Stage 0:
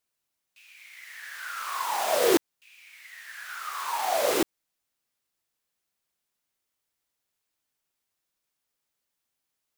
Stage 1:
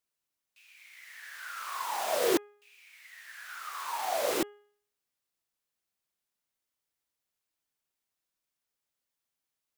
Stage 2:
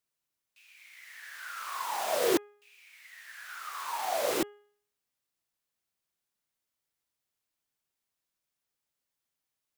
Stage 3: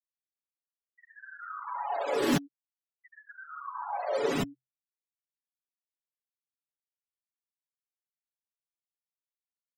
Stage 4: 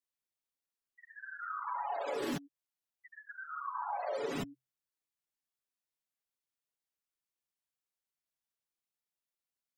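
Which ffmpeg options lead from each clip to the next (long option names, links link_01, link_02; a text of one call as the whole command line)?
ffmpeg -i in.wav -af "bandreject=frequency=412.4:width_type=h:width=4,bandreject=frequency=824.8:width_type=h:width=4,bandreject=frequency=1237.2:width_type=h:width=4,bandreject=frequency=1649.6:width_type=h:width=4,bandreject=frequency=2062:width_type=h:width=4,bandreject=frequency=2474.4:width_type=h:width=4,bandreject=frequency=2886.8:width_type=h:width=4,bandreject=frequency=3299.2:width_type=h:width=4,volume=-5dB" out.wav
ffmpeg -i in.wav -af "equalizer=frequency=120:width_type=o:width=1.2:gain=3" out.wav
ffmpeg -i in.wav -af "afftfilt=real='re*gte(hypot(re,im),0.02)':imag='im*gte(hypot(re,im),0.02)':win_size=1024:overlap=0.75,afreqshift=-130,aecho=1:1:7.1:0.76" out.wav
ffmpeg -i in.wav -af "acompressor=threshold=-35dB:ratio=6,volume=1dB" out.wav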